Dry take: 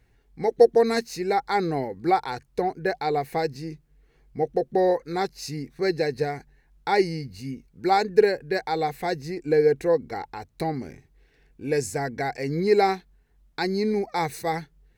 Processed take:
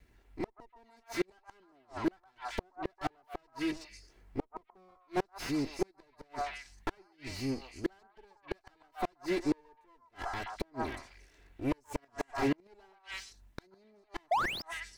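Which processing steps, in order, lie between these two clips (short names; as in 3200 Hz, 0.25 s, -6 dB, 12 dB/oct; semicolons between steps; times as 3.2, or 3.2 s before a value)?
minimum comb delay 3 ms; delay with a stepping band-pass 0.125 s, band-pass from 1000 Hz, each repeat 1.4 oct, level 0 dB; flipped gate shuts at -19 dBFS, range -39 dB; painted sound rise, 14.31–14.62, 630–5400 Hz -23 dBFS; slew limiter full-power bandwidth 41 Hz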